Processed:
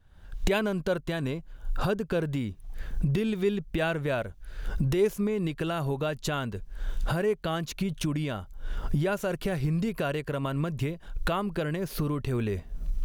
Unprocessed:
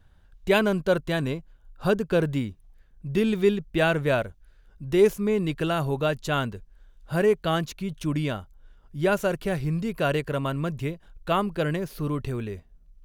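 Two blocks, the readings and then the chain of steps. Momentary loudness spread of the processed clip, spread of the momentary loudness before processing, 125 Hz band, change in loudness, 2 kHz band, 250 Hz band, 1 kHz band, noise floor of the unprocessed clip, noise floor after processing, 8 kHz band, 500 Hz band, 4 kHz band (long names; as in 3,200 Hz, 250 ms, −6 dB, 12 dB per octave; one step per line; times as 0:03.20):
11 LU, 13 LU, −1.0 dB, −4.5 dB, −5.0 dB, −3.0 dB, −5.0 dB, −57 dBFS, −49 dBFS, 0.0 dB, −5.5 dB, −3.5 dB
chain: camcorder AGC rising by 61 dB per second
level −6 dB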